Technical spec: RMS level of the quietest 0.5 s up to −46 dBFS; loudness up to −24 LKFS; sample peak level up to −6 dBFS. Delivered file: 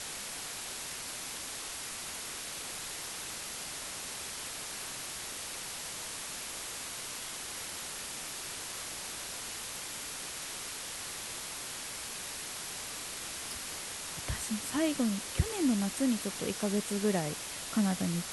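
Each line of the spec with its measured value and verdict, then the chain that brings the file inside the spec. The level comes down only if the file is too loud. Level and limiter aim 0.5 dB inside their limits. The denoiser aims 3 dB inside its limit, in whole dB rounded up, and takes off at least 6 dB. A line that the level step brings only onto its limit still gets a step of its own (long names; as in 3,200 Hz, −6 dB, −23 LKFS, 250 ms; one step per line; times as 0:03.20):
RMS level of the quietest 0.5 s −41 dBFS: out of spec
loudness −36.0 LKFS: in spec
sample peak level −14.5 dBFS: in spec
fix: broadband denoise 8 dB, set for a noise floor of −41 dBFS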